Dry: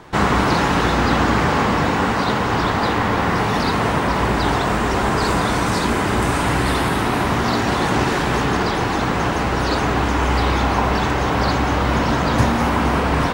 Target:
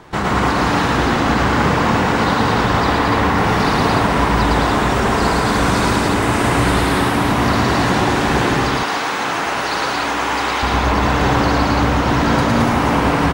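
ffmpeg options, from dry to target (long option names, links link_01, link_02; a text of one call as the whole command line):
ffmpeg -i in.wav -filter_complex "[0:a]asettb=1/sr,asplit=3[link_01][link_02][link_03];[link_01]atrim=end=8.544[link_04];[link_02]atrim=start=8.54:end=10.63,asetpts=PTS-STARTPTS,afade=type=in:duration=0.004:curve=qsin,afade=type=out:start_time=2.086:duration=0.004:curve=qsin,highpass=frequency=880:poles=1[link_05];[link_03]atrim=start=10.626[link_06];[link_04][link_05]acrossfade=duration=0.004:curve1=hsin:curve2=qsin[link_07];[link_07][link_06]acrossfade=duration=0.004:curve1=qsin:curve2=hsin,alimiter=limit=-9.5dB:level=0:latency=1:release=259,aecho=1:1:110.8|218.7|288.6:0.891|0.708|0.708" out.wav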